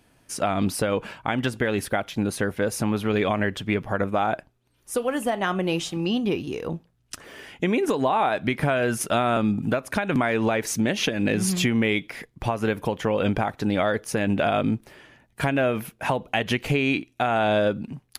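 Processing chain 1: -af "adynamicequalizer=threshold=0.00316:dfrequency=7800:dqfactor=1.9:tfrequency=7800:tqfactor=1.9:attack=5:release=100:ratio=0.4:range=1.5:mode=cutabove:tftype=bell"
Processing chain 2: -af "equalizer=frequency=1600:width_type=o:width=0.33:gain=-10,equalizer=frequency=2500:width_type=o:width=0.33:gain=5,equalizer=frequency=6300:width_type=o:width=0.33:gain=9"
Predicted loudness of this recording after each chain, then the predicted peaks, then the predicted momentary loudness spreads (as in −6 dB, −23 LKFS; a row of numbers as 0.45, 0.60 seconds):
−25.0, −24.5 LKFS; −8.5, −8.0 dBFS; 7, 7 LU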